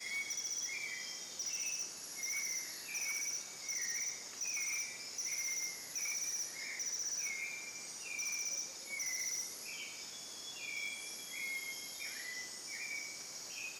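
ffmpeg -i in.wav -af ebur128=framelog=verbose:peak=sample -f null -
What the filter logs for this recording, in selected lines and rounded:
Integrated loudness:
  I:         -38.8 LUFS
  Threshold: -48.8 LUFS
Loudness range:
  LRA:         4.0 LU
  Threshold: -58.6 LUFS
  LRA low:   -41.4 LUFS
  LRA high:  -37.4 LUFS
Sample peak:
  Peak:      -35.2 dBFS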